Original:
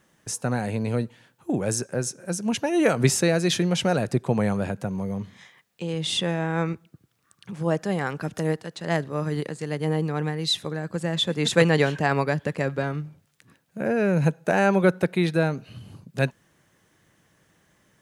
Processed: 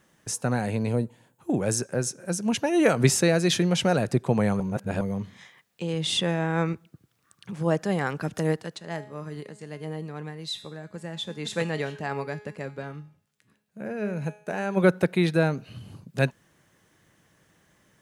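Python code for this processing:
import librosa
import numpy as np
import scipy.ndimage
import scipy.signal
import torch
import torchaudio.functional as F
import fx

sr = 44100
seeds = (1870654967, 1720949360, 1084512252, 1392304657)

y = fx.spec_box(x, sr, start_s=0.92, length_s=0.48, low_hz=1100.0, high_hz=6400.0, gain_db=-8)
y = fx.comb_fb(y, sr, f0_hz=210.0, decay_s=0.58, harmonics='all', damping=0.0, mix_pct=70, at=(8.77, 14.76), fade=0.02)
y = fx.edit(y, sr, fx.reverse_span(start_s=4.6, length_s=0.41), tone=tone)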